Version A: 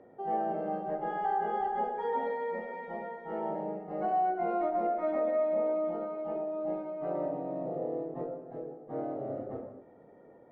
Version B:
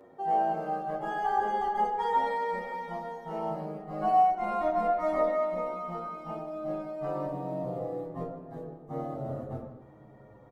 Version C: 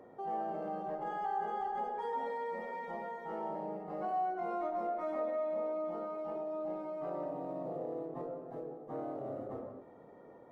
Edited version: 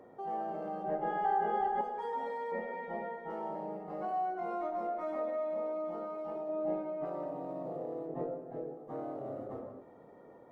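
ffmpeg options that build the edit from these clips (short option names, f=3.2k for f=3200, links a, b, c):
-filter_complex "[0:a]asplit=4[a][b][c][d];[2:a]asplit=5[e][f][g][h][i];[e]atrim=end=0.842[j];[a]atrim=start=0.838:end=1.812[k];[f]atrim=start=1.808:end=2.522[l];[b]atrim=start=2.518:end=3.302[m];[g]atrim=start=3.298:end=6.492[n];[c]atrim=start=6.488:end=7.052[o];[h]atrim=start=7.048:end=8.082[p];[d]atrim=start=8.078:end=8.772[q];[i]atrim=start=8.768[r];[j][k]acrossfade=d=0.004:c1=hsin:c2=hsin[s];[s][l]acrossfade=d=0.004:c1=hsin:c2=hsin[t];[t][m]acrossfade=d=0.004:c1=hsin:c2=hsin[u];[u][n]acrossfade=d=0.004:c1=hsin:c2=hsin[v];[v][o]acrossfade=d=0.004:c1=hsin:c2=hsin[w];[w][p]acrossfade=d=0.004:c1=hsin:c2=hsin[x];[x][q]acrossfade=d=0.004:c1=hsin:c2=hsin[y];[y][r]acrossfade=d=0.004:c1=hsin:c2=hsin"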